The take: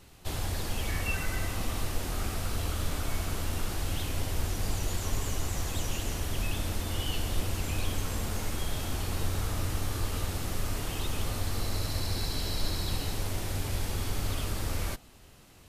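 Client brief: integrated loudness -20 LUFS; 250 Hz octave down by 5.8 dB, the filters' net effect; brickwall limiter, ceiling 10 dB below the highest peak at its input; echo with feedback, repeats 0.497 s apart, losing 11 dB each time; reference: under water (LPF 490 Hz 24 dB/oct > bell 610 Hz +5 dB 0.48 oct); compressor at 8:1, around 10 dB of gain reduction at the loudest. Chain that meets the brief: bell 250 Hz -8.5 dB; compressor 8:1, threshold -34 dBFS; limiter -34.5 dBFS; LPF 490 Hz 24 dB/oct; bell 610 Hz +5 dB 0.48 oct; feedback echo 0.497 s, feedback 28%, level -11 dB; gain +28.5 dB

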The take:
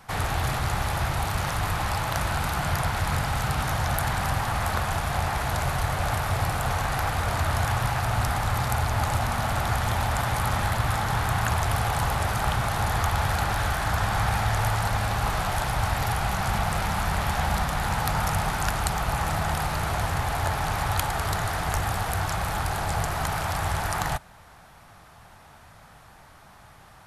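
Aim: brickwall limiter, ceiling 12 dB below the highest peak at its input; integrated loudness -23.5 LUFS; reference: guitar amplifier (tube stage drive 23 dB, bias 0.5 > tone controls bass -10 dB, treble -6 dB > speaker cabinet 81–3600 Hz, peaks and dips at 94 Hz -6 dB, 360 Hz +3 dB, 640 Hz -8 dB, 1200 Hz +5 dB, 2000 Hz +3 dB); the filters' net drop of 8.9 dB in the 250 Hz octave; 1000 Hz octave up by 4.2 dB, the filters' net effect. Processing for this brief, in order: bell 250 Hz -4.5 dB; bell 1000 Hz +4.5 dB; limiter -16.5 dBFS; tube stage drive 23 dB, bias 0.5; tone controls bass -10 dB, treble -6 dB; speaker cabinet 81–3600 Hz, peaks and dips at 94 Hz -6 dB, 360 Hz +3 dB, 640 Hz -8 dB, 1200 Hz +5 dB, 2000 Hz +3 dB; gain +6.5 dB

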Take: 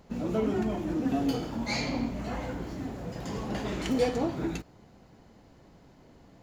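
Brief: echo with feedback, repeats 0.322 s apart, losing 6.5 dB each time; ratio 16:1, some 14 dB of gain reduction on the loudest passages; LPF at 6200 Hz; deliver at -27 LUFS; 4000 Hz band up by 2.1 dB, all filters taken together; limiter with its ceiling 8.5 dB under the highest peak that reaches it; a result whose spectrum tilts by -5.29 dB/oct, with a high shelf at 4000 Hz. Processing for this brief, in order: LPF 6200 Hz; high shelf 4000 Hz -8 dB; bell 4000 Hz +8 dB; compressor 16:1, threshold -36 dBFS; limiter -34.5 dBFS; feedback echo 0.322 s, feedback 47%, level -6.5 dB; gain +16 dB

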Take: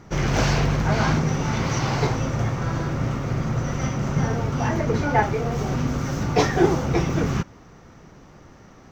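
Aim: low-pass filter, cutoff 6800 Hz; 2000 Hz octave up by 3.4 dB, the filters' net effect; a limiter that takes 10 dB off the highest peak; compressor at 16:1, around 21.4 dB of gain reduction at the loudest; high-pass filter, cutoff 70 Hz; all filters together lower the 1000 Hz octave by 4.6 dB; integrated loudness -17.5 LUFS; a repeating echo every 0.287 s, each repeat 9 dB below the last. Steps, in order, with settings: HPF 70 Hz; LPF 6800 Hz; bell 1000 Hz -8 dB; bell 2000 Hz +7 dB; compressor 16:1, threshold -35 dBFS; limiter -34.5 dBFS; feedback echo 0.287 s, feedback 35%, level -9 dB; gain +25.5 dB

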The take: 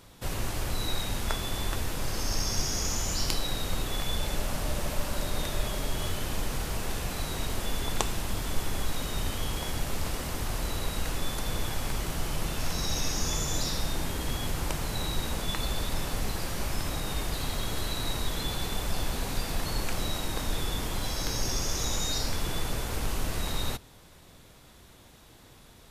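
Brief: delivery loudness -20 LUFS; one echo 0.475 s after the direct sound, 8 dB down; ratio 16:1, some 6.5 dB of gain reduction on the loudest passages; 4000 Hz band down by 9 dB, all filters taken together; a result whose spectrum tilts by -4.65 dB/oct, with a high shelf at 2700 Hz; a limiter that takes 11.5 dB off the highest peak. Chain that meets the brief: high shelf 2700 Hz -4.5 dB; bell 4000 Hz -7.5 dB; compressor 16:1, threshold -28 dBFS; limiter -25.5 dBFS; echo 0.475 s -8 dB; gain +18 dB

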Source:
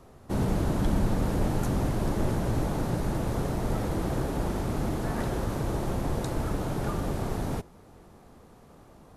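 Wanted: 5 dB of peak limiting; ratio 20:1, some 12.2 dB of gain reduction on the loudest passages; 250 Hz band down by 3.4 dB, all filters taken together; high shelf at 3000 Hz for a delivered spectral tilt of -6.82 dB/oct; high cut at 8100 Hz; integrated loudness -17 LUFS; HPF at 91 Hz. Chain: HPF 91 Hz; LPF 8100 Hz; bell 250 Hz -4.5 dB; high shelf 3000 Hz -4 dB; compressor 20:1, threshold -38 dBFS; gain +27.5 dB; limiter -7.5 dBFS

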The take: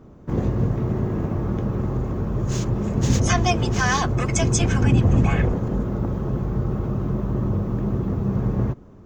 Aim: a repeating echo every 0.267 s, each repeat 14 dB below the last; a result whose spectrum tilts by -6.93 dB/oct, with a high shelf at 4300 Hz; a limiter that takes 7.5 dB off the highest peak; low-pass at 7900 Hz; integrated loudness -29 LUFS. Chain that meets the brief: LPF 7900 Hz; high shelf 4300 Hz -3 dB; limiter -14 dBFS; feedback echo 0.267 s, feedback 20%, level -14 dB; gain -5 dB

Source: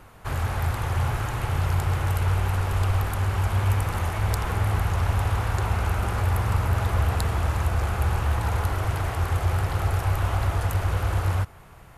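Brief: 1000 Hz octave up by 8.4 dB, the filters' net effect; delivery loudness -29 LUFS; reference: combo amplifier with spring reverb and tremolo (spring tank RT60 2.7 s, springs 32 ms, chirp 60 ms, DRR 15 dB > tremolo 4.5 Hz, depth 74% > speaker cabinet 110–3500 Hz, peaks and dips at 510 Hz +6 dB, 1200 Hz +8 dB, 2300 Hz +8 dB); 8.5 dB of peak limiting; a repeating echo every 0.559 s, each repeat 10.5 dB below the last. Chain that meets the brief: bell 1000 Hz +5.5 dB; limiter -17 dBFS; feedback echo 0.559 s, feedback 30%, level -10.5 dB; spring tank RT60 2.7 s, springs 32 ms, chirp 60 ms, DRR 15 dB; tremolo 4.5 Hz, depth 74%; speaker cabinet 110–3500 Hz, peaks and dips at 510 Hz +6 dB, 1200 Hz +8 dB, 2300 Hz +8 dB

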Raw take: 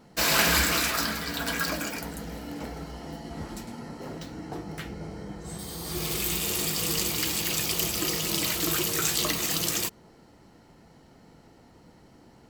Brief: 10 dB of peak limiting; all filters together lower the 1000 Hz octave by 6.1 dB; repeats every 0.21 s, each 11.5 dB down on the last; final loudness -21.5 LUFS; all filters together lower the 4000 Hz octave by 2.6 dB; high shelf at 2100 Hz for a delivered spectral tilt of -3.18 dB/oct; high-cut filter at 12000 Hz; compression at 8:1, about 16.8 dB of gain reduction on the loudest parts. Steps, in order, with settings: LPF 12000 Hz; bell 1000 Hz -9 dB; high shelf 2100 Hz +3.5 dB; bell 4000 Hz -6.5 dB; compressor 8:1, threshold -38 dBFS; limiter -32 dBFS; feedback echo 0.21 s, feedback 27%, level -11.5 dB; gain +20 dB

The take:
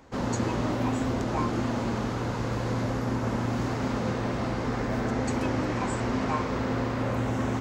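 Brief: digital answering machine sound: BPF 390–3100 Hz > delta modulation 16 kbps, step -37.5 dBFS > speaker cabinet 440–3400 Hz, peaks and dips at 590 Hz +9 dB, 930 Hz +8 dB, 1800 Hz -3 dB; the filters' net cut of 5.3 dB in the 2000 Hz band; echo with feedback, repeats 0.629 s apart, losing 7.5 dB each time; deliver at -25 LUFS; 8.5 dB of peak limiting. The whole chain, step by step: bell 2000 Hz -5 dB; limiter -24 dBFS; BPF 390–3100 Hz; feedback echo 0.629 s, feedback 42%, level -7.5 dB; delta modulation 16 kbps, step -37.5 dBFS; speaker cabinet 440–3400 Hz, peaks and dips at 590 Hz +9 dB, 930 Hz +8 dB, 1800 Hz -3 dB; gain +8.5 dB

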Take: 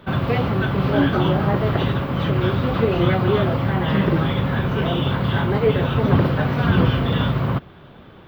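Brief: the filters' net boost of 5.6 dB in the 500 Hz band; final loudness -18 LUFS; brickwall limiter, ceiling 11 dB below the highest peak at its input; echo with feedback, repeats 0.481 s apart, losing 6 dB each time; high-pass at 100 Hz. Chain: HPF 100 Hz; bell 500 Hz +7 dB; limiter -13 dBFS; feedback echo 0.481 s, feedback 50%, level -6 dB; gain +3 dB

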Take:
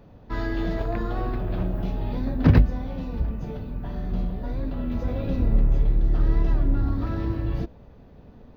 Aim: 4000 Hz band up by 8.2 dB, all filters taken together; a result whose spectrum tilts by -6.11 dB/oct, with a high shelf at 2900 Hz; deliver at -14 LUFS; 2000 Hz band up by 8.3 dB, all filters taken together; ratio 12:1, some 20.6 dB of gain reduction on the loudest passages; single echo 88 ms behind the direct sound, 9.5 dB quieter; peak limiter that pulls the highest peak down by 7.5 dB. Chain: bell 2000 Hz +8 dB; high shelf 2900 Hz +4.5 dB; bell 4000 Hz +4 dB; compressor 12:1, threshold -31 dBFS; limiter -28.5 dBFS; echo 88 ms -9.5 dB; gain +25 dB

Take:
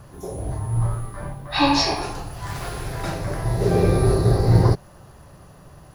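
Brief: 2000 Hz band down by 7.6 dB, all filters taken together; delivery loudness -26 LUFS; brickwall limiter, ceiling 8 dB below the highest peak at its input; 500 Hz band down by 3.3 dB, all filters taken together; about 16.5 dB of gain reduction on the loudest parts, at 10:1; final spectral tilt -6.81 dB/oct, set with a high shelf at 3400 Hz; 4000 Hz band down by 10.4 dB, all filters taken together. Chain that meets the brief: bell 500 Hz -4 dB; bell 2000 Hz -6 dB; high shelf 3400 Hz -4.5 dB; bell 4000 Hz -8.5 dB; compressor 10:1, threshold -27 dBFS; gain +9.5 dB; limiter -16.5 dBFS

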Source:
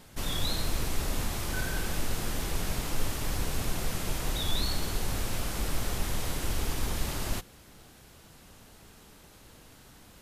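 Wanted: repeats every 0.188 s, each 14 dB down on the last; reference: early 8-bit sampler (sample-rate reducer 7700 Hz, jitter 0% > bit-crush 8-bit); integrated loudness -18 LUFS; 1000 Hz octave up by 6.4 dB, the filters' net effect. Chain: bell 1000 Hz +8 dB; feedback echo 0.188 s, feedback 20%, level -14 dB; sample-rate reducer 7700 Hz, jitter 0%; bit-crush 8-bit; gain +14 dB

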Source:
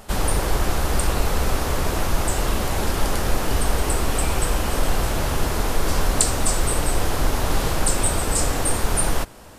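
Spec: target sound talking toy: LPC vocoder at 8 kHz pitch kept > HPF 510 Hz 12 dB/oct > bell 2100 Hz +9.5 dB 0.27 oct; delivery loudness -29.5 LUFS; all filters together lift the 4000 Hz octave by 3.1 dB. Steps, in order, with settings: bell 4000 Hz +3.5 dB; LPC vocoder at 8 kHz pitch kept; HPF 510 Hz 12 dB/oct; bell 2100 Hz +9.5 dB 0.27 oct; gain -3 dB

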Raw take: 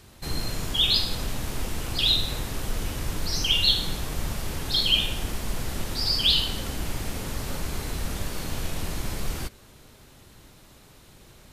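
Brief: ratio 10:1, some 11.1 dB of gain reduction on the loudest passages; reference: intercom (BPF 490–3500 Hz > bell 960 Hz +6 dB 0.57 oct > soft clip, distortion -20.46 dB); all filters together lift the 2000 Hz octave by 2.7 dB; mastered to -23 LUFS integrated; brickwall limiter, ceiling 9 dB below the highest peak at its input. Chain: bell 2000 Hz +4.5 dB; compressor 10:1, threshold -27 dBFS; limiter -26.5 dBFS; BPF 490–3500 Hz; bell 960 Hz +6 dB 0.57 oct; soft clip -32.5 dBFS; gain +18 dB

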